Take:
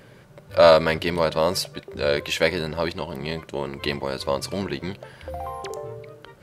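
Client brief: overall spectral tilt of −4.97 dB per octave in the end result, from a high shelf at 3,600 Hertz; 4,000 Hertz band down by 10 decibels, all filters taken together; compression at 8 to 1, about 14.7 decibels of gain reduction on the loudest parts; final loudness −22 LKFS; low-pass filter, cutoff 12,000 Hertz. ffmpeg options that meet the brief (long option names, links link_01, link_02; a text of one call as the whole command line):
ffmpeg -i in.wav -af "lowpass=12000,highshelf=frequency=3600:gain=-6,equalizer=frequency=4000:width_type=o:gain=-8.5,acompressor=threshold=-25dB:ratio=8,volume=10.5dB" out.wav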